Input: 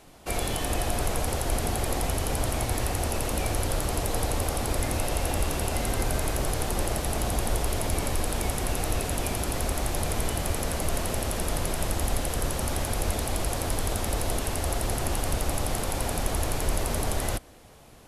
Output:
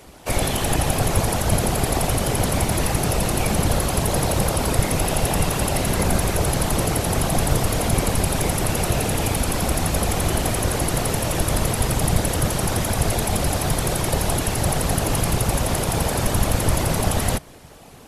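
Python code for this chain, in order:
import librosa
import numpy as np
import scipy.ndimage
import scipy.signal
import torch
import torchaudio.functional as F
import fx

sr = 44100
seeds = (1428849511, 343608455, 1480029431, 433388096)

y = fx.whisperise(x, sr, seeds[0])
y = y * librosa.db_to_amplitude(7.0)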